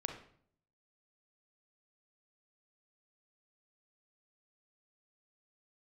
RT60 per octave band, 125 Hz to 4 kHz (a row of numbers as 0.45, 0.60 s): 0.90, 0.75, 0.65, 0.55, 0.50, 0.45 s